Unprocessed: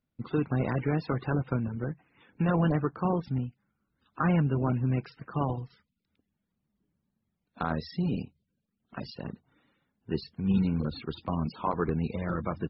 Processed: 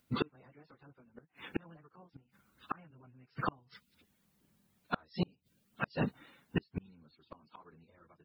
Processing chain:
spectral tilt +2 dB per octave
time stretch by phase vocoder 0.65×
gate with flip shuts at −33 dBFS, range −38 dB
level +14 dB

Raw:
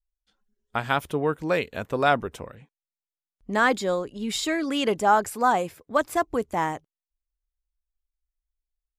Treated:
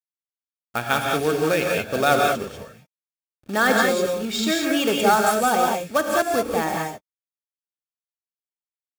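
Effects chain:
low-pass that shuts in the quiet parts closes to 2,300 Hz, open at −19.5 dBFS
high-shelf EQ 3,100 Hz +4.5 dB
log-companded quantiser 4 bits
notch comb filter 1,000 Hz
reverb whose tail is shaped and stops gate 220 ms rising, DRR −0.5 dB
level +1 dB

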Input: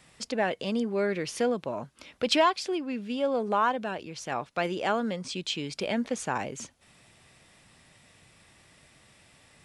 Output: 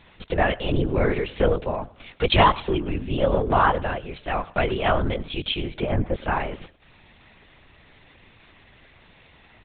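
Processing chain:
0:05.53–0:06.15: treble cut that deepens with the level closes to 1,500 Hz, closed at −29 dBFS
on a send: repeating echo 105 ms, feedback 28%, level −20 dB
on the sum: linear-prediction vocoder at 8 kHz whisper
level +6.5 dB

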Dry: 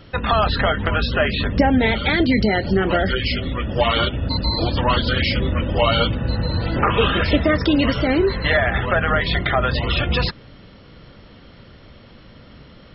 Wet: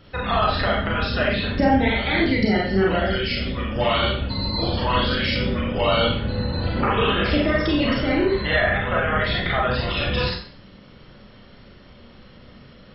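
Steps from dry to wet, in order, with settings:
four-comb reverb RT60 0.47 s, combs from 30 ms, DRR −3 dB
level −6.5 dB

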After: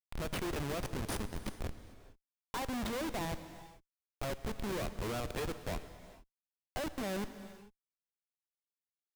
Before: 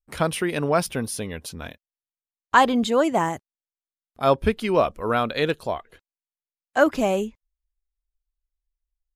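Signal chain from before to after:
downward compressor 5 to 1, threshold −22 dBFS, peak gain reduction 11 dB
comparator with hysteresis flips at −27 dBFS
reverb whose tail is shaped and stops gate 470 ms flat, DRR 11 dB
level −6 dB

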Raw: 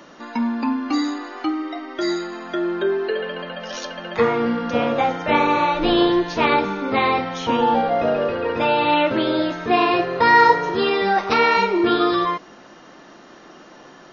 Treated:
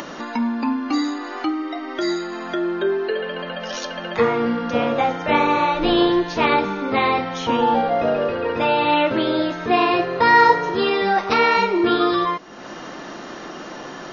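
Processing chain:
upward compression, threshold −23 dBFS

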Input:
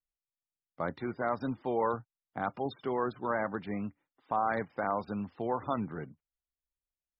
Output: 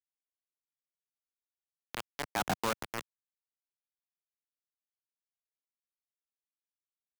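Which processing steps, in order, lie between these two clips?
slices reordered back to front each 93 ms, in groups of 6
source passing by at 0:02.52, 21 m/s, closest 1.4 metres
soft clipping −28 dBFS, distortion −18 dB
log-companded quantiser 2 bits
multiband upward and downward compressor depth 40%
level +1.5 dB

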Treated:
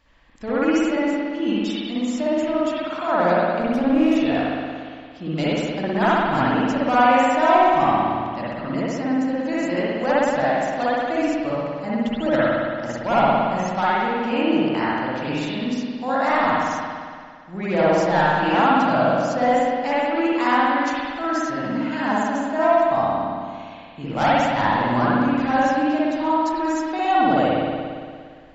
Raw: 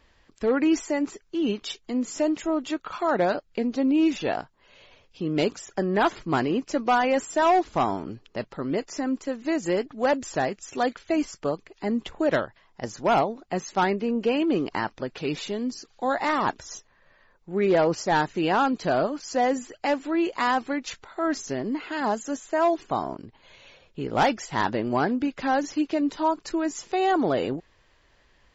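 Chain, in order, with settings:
0:03.61–0:04.15: lower of the sound and its delayed copy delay 0.34 ms
parametric band 400 Hz −13 dB 0.31 octaves
spring reverb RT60 2 s, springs 57 ms, chirp 45 ms, DRR −8.5 dB
level −2.5 dB

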